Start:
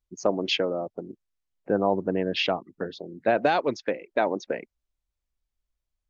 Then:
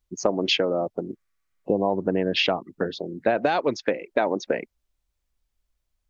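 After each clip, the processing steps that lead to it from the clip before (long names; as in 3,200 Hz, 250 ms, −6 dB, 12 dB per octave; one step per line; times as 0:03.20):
downward compressor 4 to 1, threshold −25 dBFS, peak gain reduction 7.5 dB
healed spectral selection 0:01.13–0:01.87, 1,100–2,600 Hz before
level +6.5 dB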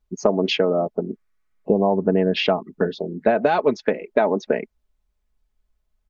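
high-shelf EQ 2,400 Hz −10 dB
comb filter 4.7 ms, depth 49%
level +4 dB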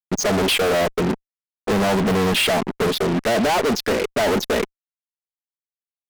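fuzz pedal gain 40 dB, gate −40 dBFS
level −4 dB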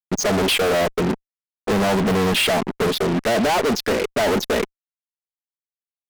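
no processing that can be heard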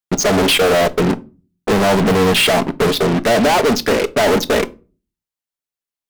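rectangular room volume 170 cubic metres, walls furnished, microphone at 0.33 metres
level +5 dB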